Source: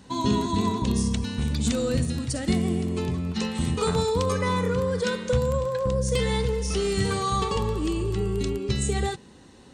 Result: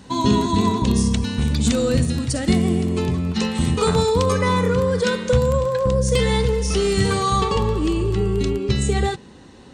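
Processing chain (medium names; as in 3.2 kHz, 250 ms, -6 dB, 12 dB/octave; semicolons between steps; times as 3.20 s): treble shelf 8.4 kHz -2 dB, from 7.41 s -10.5 dB; trim +6 dB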